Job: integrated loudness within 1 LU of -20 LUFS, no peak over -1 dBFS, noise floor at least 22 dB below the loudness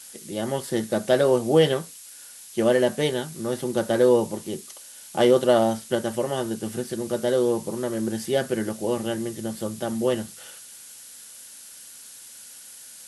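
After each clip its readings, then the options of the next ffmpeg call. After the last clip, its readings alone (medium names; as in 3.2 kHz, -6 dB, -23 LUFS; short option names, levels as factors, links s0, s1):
noise floor -45 dBFS; noise floor target -46 dBFS; loudness -24.0 LUFS; peak level -6.0 dBFS; loudness target -20.0 LUFS
-> -af "afftdn=nr=6:nf=-45"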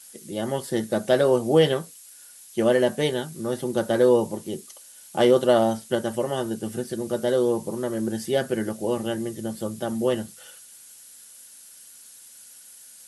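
noise floor -48 dBFS; loudness -24.0 LUFS; peak level -6.0 dBFS; loudness target -20.0 LUFS
-> -af "volume=1.58"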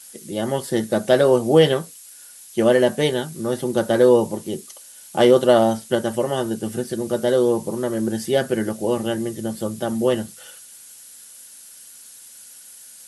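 loudness -20.0 LUFS; peak level -2.5 dBFS; noise floor -44 dBFS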